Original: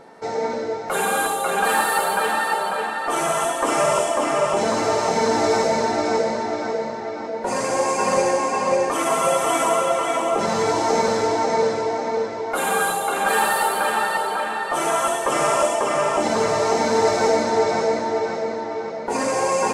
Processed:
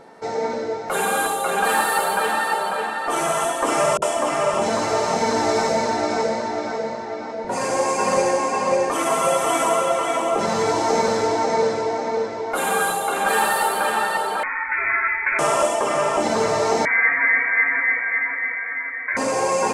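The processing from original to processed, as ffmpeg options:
-filter_complex "[0:a]asettb=1/sr,asplit=3[a][b][c];[a]atrim=end=3.974[d];[b]atrim=start=3.97:end=7.65,asetpts=PTS-STARTPTS,afade=t=in:d=0.004:c=qsin,afade=t=out:st=3.676:d=0.004:c=qsin,acrossover=split=330[e][f];[f]adelay=50[g];[e][g]amix=inputs=2:normalize=0,atrim=end_sample=162288[h];[c]atrim=start=7.646[i];[d][h]acrossfade=d=0.004:c1=hsin:c2=qsin[j];[j][i]acrossfade=d=0.004:c1=qsin:c2=hsin,asettb=1/sr,asplit=3[k][l][m];[k]atrim=end=14.434[n];[l]atrim=start=14.43:end=15.39,asetpts=PTS-STARTPTS,afade=t=in:d=0.004:c=qsin,afade=t=out:st=0.956:d=0.004:c=qsin,lowpass=f=2.3k:t=q:w=0.5098,lowpass=f=2.3k:t=q:w=0.6013,lowpass=f=2.3k:t=q:w=0.9,lowpass=f=2.3k:t=q:w=2.563,afreqshift=-2700[o];[m]atrim=start=15.386[p];[n][o]acrossfade=d=0.004:c1=hsin:c2=qsin[q];[q][p]acrossfade=d=0.004:c1=qsin:c2=hsin,asettb=1/sr,asplit=3[r][s][t];[r]atrim=end=16.854[u];[s]atrim=start=16.85:end=19.17,asetpts=PTS-STARTPTS,afade=t=in:d=0.004:c=qsin,afade=t=out:st=2.316:d=0.004:c=qsin,lowpass=f=2.1k:t=q:w=0.5098,lowpass=f=2.1k:t=q:w=0.6013,lowpass=f=2.1k:t=q:w=0.9,lowpass=f=2.1k:t=q:w=2.563,afreqshift=-2500[v];[t]atrim=start=19.166[w];[u][v]acrossfade=d=0.004:c1=hsin:c2=qsin[x];[x][w]acrossfade=d=0.004:c1=qsin:c2=hsin"

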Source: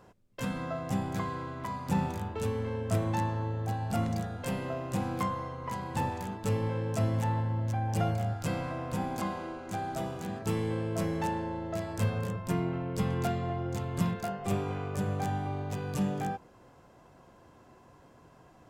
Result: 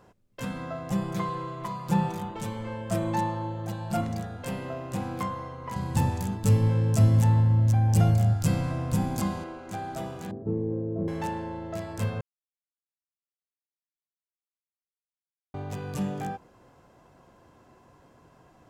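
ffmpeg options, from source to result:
-filter_complex "[0:a]asettb=1/sr,asplit=3[a][b][c];[a]atrim=end=0.914[d];[b]atrim=start=0.91:end=4.01,asetpts=PTS-STARTPTS,afade=t=in:d=0.004:c=qsin,afade=t=out:st=3.096:d=0.004:c=qsin,aecho=1:1:5.8:0.89,atrim=end_sample=136710[e];[c]atrim=start=4.006[f];[d][e]acrossfade=d=0.004:c1=hsin:c2=qsin[g];[g][f]acrossfade=d=0.004:c1=qsin:c2=hsin,asettb=1/sr,asplit=3[h][i][j];[h]atrim=end=5.764[k];[i]atrim=start=5.76:end=9.44,asetpts=PTS-STARTPTS,afade=t=in:d=0.004:c=qsin,afade=t=out:st=3.676:d=0.004:c=qsin,bass=f=250:g=11,treble=f=4k:g=9[l];[j]atrim=start=9.436[m];[k][l]acrossfade=d=0.004:c1=hsin:c2=qsin[n];[n][m]acrossfade=d=0.004:c1=qsin:c2=hsin,asettb=1/sr,asplit=3[o][p][q];[o]atrim=end=10.314[r];[p]atrim=start=10.31:end=11.08,asetpts=PTS-STARTPTS,afade=t=in:d=0.004:c=qsin,afade=t=out:st=0.766:d=0.004:c=qsin,lowpass=f=400:t=q:w=1.6[s];[q]atrim=start=11.076[t];[r][s]acrossfade=d=0.004:c1=hsin:c2=qsin[u];[u][t]acrossfade=d=0.004:c1=qsin:c2=hsin,asplit=3[v][w][x];[v]atrim=end=12.21,asetpts=PTS-STARTPTS,afade=t=out:st=12.206:d=0.004:c=hsin[y];[w]atrim=start=12.21:end=15.54,asetpts=PTS-STARTPTS,volume=0[z];[x]atrim=start=15.54,asetpts=PTS-STARTPTS,afade=t=in:d=0.004:c=hsin[aa];[y][z][aa]concat=n=3:v=0:a=1"

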